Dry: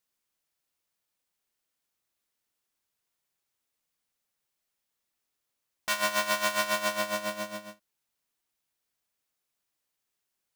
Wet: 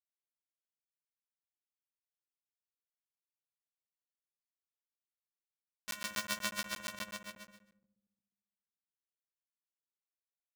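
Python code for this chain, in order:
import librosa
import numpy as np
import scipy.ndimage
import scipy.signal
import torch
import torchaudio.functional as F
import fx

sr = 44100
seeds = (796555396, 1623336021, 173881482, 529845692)

p1 = fx.chorus_voices(x, sr, voices=4, hz=0.73, base_ms=27, depth_ms=3.1, mix_pct=30)
p2 = fx.power_curve(p1, sr, exponent=2.0)
p3 = fx.peak_eq(p2, sr, hz=740.0, db=-8.0, octaves=0.7)
p4 = p3 + fx.echo_filtered(p3, sr, ms=70, feedback_pct=74, hz=860.0, wet_db=-7.0, dry=0)
y = fx.buffer_crackle(p4, sr, first_s=0.99, period_s=0.12, block=512, kind='zero')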